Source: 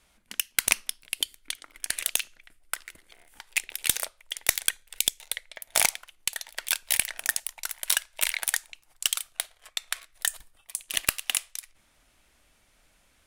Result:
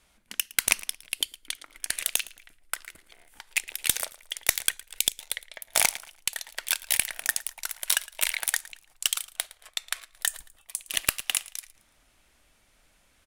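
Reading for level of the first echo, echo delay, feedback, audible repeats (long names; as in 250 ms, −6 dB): −20.0 dB, 112 ms, 32%, 2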